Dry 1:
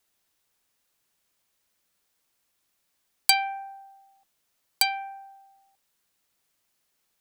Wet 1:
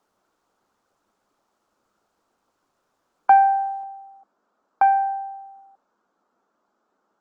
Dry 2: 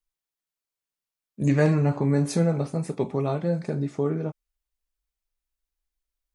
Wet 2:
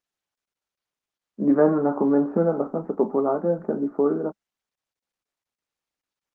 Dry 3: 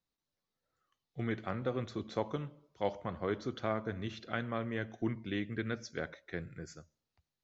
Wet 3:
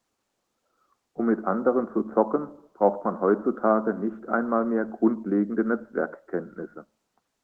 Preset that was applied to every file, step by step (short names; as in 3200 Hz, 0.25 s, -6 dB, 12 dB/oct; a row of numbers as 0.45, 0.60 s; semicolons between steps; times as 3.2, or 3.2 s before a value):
Chebyshev band-pass 200–1400 Hz, order 4; Opus 20 kbps 48000 Hz; normalise peaks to -6 dBFS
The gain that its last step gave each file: +14.5, +6.0, +14.5 dB